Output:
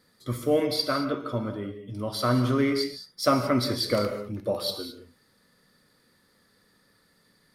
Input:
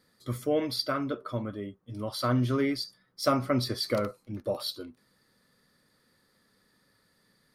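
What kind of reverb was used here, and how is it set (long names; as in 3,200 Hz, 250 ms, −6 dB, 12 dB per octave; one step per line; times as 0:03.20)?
reverb whose tail is shaped and stops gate 240 ms flat, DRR 6.5 dB
level +3 dB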